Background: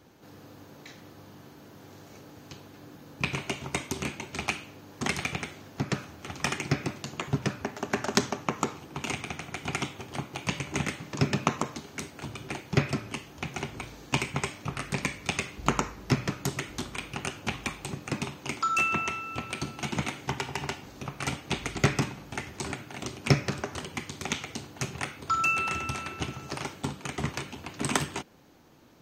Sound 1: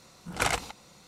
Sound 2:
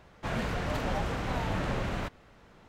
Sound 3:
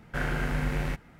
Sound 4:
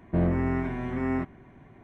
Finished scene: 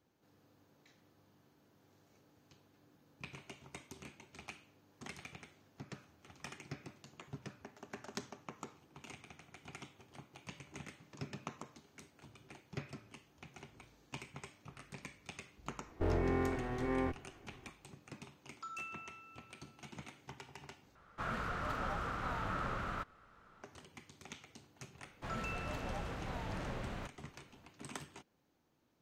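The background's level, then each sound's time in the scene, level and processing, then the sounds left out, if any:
background -19.5 dB
15.87 s: add 4 -5.5 dB + comb filter that takes the minimum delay 2.7 ms
20.95 s: replace with 2 -10.5 dB + peaking EQ 1.3 kHz +15 dB 0.47 oct
24.99 s: add 2 -10.5 dB
not used: 1, 3

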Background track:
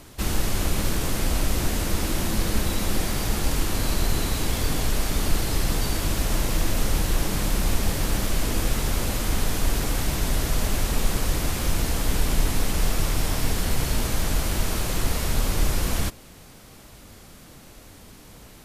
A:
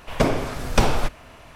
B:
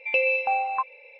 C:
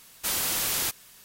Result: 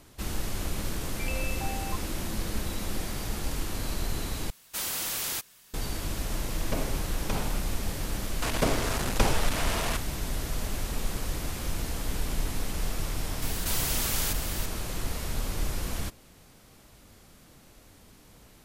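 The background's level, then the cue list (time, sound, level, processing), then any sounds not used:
background track -8 dB
1.14 s: add B -10.5 dB + compression 2:1, threshold -27 dBFS
4.50 s: replace with C -4.5 dB
6.52 s: add A -13 dB + peak limiter -5.5 dBFS
8.42 s: add A -7 dB + one-bit delta coder 64 kbps, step -17.5 dBFS
13.42 s: add C -3.5 dB + level flattener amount 70%

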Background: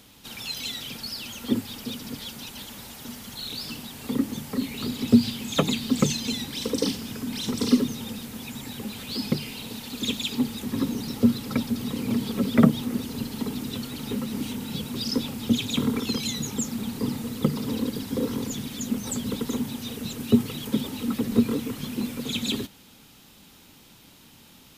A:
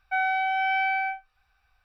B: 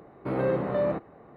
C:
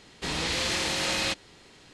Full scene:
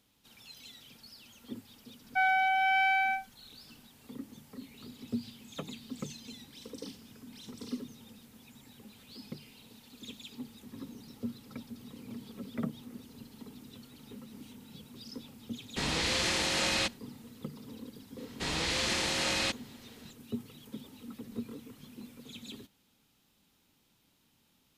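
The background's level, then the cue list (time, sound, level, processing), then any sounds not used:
background -18.5 dB
2.04 s: add A -1 dB + single-diode clipper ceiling -18.5 dBFS
15.54 s: add C -2 dB + expander -46 dBFS
18.18 s: add C -3 dB
not used: B

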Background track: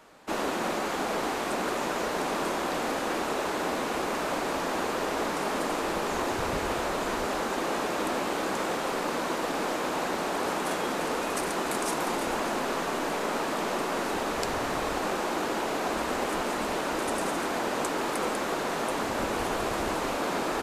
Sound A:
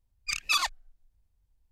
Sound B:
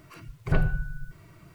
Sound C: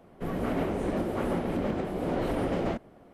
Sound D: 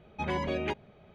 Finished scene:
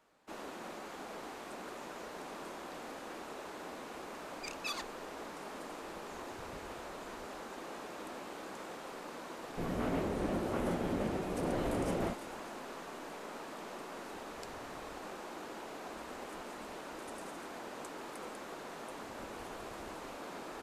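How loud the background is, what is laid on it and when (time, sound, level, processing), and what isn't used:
background track -16 dB
4.15 s: add A -14 dB
9.36 s: add C -5.5 dB
not used: B, D

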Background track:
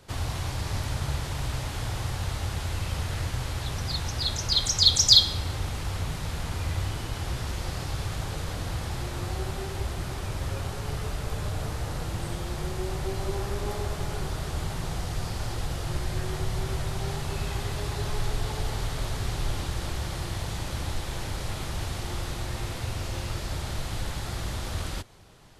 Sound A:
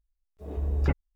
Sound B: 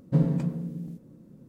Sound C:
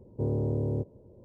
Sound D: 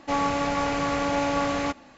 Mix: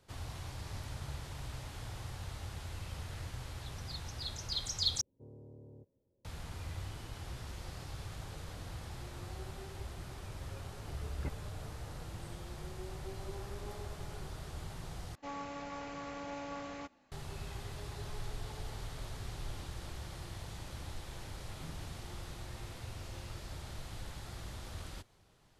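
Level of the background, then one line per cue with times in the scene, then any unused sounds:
background track -13 dB
5.01 s: replace with C -15.5 dB + feedback comb 270 Hz, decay 0.3 s, mix 70%
10.37 s: add A -15 dB
15.15 s: replace with D -18 dB
21.48 s: add B -17.5 dB + spectral noise reduction 11 dB

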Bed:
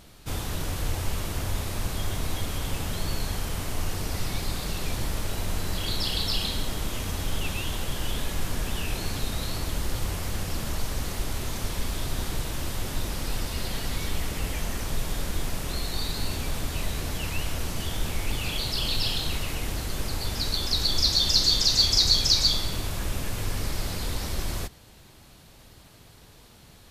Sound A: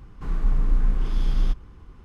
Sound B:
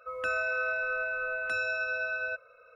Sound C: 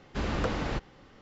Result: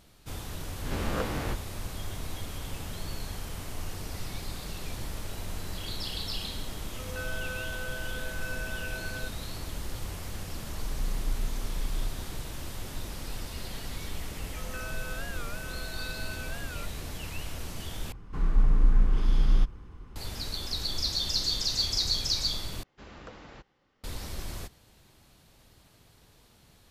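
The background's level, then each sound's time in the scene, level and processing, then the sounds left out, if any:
bed -7.5 dB
0.76 s: add C -3.5 dB + reverse spectral sustain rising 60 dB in 0.51 s
6.92 s: add B -9 dB + doubling 16 ms -4.5 dB
10.56 s: add A -11 dB
14.50 s: add B -11 dB + warped record 45 rpm, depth 160 cents
18.12 s: replace with A -0.5 dB
22.83 s: replace with C -14 dB + bass shelf 420 Hz -5 dB

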